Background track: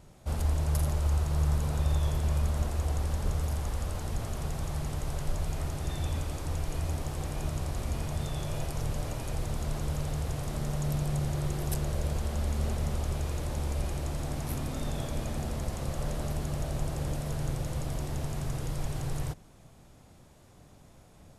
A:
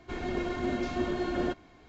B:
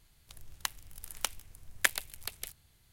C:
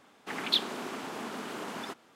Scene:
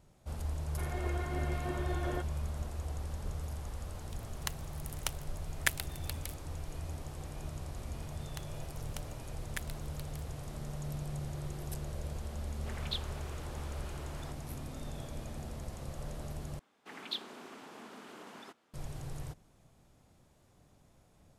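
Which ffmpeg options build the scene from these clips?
ffmpeg -i bed.wav -i cue0.wav -i cue1.wav -i cue2.wav -filter_complex "[2:a]asplit=2[link_01][link_02];[3:a]asplit=2[link_03][link_04];[0:a]volume=-9dB[link_05];[1:a]highpass=440,lowpass=2800[link_06];[link_03]highpass=frequency=350:width=0.5412,highpass=frequency=350:width=1.3066[link_07];[link_04]aresample=32000,aresample=44100[link_08];[link_05]asplit=2[link_09][link_10];[link_09]atrim=end=16.594[link_11];[link_08]atrim=end=2.15,asetpts=PTS-STARTPTS,volume=-11.5dB[link_12];[link_10]atrim=start=18.736[link_13];[link_06]atrim=end=1.88,asetpts=PTS-STARTPTS,volume=-4dB,afade=type=in:duration=0.004:curve=hsin,afade=type=out:start_time=1.876:duration=0.004:curve=hsin,adelay=690[link_14];[link_01]atrim=end=2.92,asetpts=PTS-STARTPTS,volume=-3.5dB,afade=type=in:duration=0.004:curve=hsin,afade=type=out:start_time=2.916:duration=0.004:curve=hsin,adelay=3820[link_15];[link_02]atrim=end=2.92,asetpts=PTS-STARTPTS,volume=-14.5dB,afade=type=in:duration=0.004:curve=hsin,afade=type=out:start_time=2.916:duration=0.004:curve=hsin,adelay=7720[link_16];[link_07]atrim=end=2.15,asetpts=PTS-STARTPTS,volume=-11.5dB,afade=type=in:duration=0.004:curve=hsin,afade=type=out:start_time=2.146:duration=0.004:curve=hsin,adelay=12390[link_17];[link_11][link_12]acrossfade=duration=0.004:curve1=hsin:curve2=hsin[link_18];[link_18][link_13]acrossfade=duration=0.004:curve1=hsin:curve2=hsin[link_19];[link_19][link_14][link_15][link_16][link_17]amix=inputs=5:normalize=0" out.wav

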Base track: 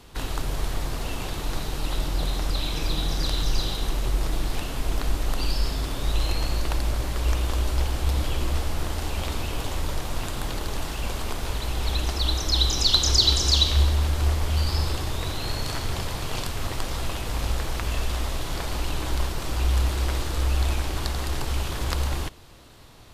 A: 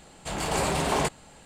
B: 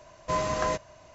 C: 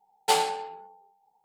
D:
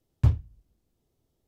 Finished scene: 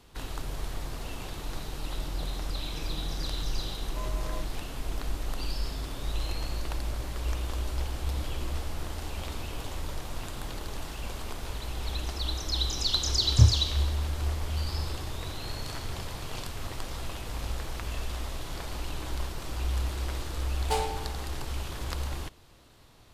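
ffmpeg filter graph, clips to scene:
ffmpeg -i bed.wav -i cue0.wav -i cue1.wav -i cue2.wav -i cue3.wav -filter_complex "[0:a]volume=-7.5dB[link_01];[4:a]asplit=2[link_02][link_03];[link_03]adelay=27,volume=-3dB[link_04];[link_02][link_04]amix=inputs=2:normalize=0[link_05];[3:a]lowshelf=frequency=380:gain=12[link_06];[2:a]atrim=end=1.14,asetpts=PTS-STARTPTS,volume=-14.5dB,afade=type=in:duration=0.004:curve=hsin,afade=type=out:start_time=1.136:duration=0.004:curve=hsin,adelay=3670[link_07];[link_05]atrim=end=1.47,asetpts=PTS-STARTPTS,volume=-0.5dB,afade=type=in:duration=0.004:curve=hsin,afade=type=out:start_time=1.466:duration=0.004:curve=hsin,adelay=13150[link_08];[link_06]atrim=end=1.44,asetpts=PTS-STARTPTS,volume=-9dB,afade=type=in:duration=0.004:curve=hsin,afade=type=out:start_time=1.436:duration=0.004:curve=hsin,adelay=20420[link_09];[link_01][link_07][link_08][link_09]amix=inputs=4:normalize=0" out.wav

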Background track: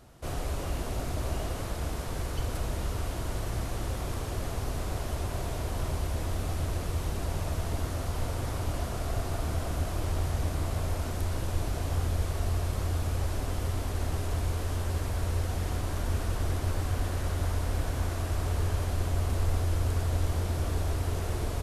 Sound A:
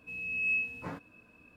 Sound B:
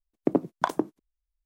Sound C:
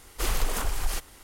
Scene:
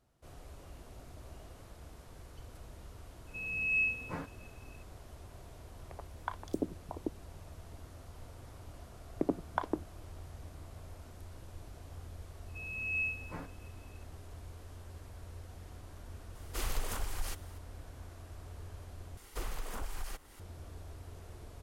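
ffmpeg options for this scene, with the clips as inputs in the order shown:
ffmpeg -i bed.wav -i cue0.wav -i cue1.wav -i cue2.wav -filter_complex "[1:a]asplit=2[link_01][link_02];[2:a]asplit=2[link_03][link_04];[3:a]asplit=2[link_05][link_06];[0:a]volume=-18.5dB[link_07];[link_03]acrossover=split=730|3500[link_08][link_09][link_10];[link_10]adelay=200[link_11];[link_08]adelay=630[link_12];[link_12][link_09][link_11]amix=inputs=3:normalize=0[link_13];[link_04]lowpass=3000[link_14];[link_06]acrossover=split=1000|2100[link_15][link_16][link_17];[link_15]acompressor=threshold=-30dB:ratio=6[link_18];[link_16]acompressor=threshold=-53dB:ratio=2[link_19];[link_17]acompressor=threshold=-47dB:ratio=4[link_20];[link_18][link_19][link_20]amix=inputs=3:normalize=0[link_21];[link_07]asplit=2[link_22][link_23];[link_22]atrim=end=19.174[link_24];[link_21]atrim=end=1.23,asetpts=PTS-STARTPTS,volume=-4.5dB[link_25];[link_23]atrim=start=20.396[link_26];[link_01]atrim=end=1.56,asetpts=PTS-STARTPTS,volume=-0.5dB,afade=type=in:duration=0.004:curve=hsin,afade=type=out:start_time=1.556:duration=0.004:curve=hsin,adelay=3270[link_27];[link_13]atrim=end=1.45,asetpts=PTS-STARTPTS,volume=-10.5dB,afade=type=in:duration=0.004:curve=hsin,afade=type=out:start_time=1.446:duration=0.004:curve=hsin,adelay=5640[link_28];[link_14]atrim=end=1.45,asetpts=PTS-STARTPTS,volume=-8.5dB,afade=type=in:duration=0.004:curve=hsin,afade=type=out:start_time=1.446:duration=0.004:curve=hsin,adelay=8940[link_29];[link_02]atrim=end=1.56,asetpts=PTS-STARTPTS,volume=-4.5dB,afade=type=in:duration=0.004:curve=hsin,afade=type=out:start_time=1.556:duration=0.004:curve=hsin,adelay=12480[link_30];[link_05]atrim=end=1.23,asetpts=PTS-STARTPTS,volume=-9dB,afade=type=in:duration=0.004:curve=hsin,afade=type=out:start_time=1.226:duration=0.004:curve=hsin,adelay=16350[link_31];[link_24][link_25]acrossfade=duration=0.004:curve1=hsin:curve2=hsin[link_32];[link_32][link_26]acrossfade=duration=0.004:curve1=hsin:curve2=hsin[link_33];[link_33][link_27][link_28][link_29][link_30][link_31]amix=inputs=6:normalize=0" out.wav

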